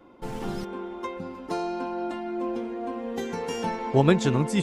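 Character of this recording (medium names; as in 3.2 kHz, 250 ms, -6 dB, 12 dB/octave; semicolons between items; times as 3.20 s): noise floor -44 dBFS; spectral tilt -6.0 dB/octave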